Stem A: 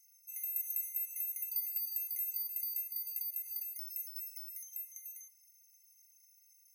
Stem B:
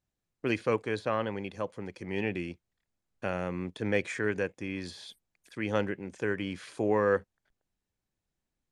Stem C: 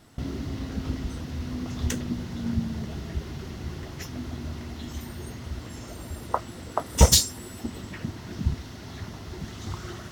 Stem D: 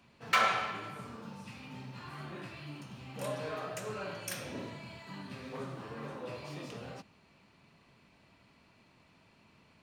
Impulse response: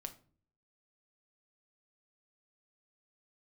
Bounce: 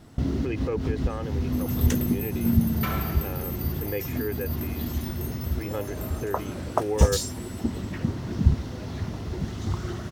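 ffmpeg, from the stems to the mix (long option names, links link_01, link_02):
-filter_complex "[0:a]adelay=1250,volume=3dB[link_01];[1:a]aecho=1:1:2.4:0.65,volume=-6dB,asplit=2[link_02][link_03];[2:a]volume=3dB[link_04];[3:a]adelay=2500,volume=-4.5dB[link_05];[link_03]apad=whole_len=446004[link_06];[link_04][link_06]sidechaincompress=threshold=-38dB:ratio=8:attack=37:release=101[link_07];[link_01][link_02][link_07][link_05]amix=inputs=4:normalize=0,tiltshelf=frequency=780:gain=4"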